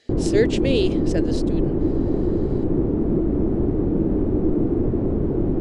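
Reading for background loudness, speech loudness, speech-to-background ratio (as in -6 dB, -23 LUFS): -22.0 LUFS, -25.5 LUFS, -3.5 dB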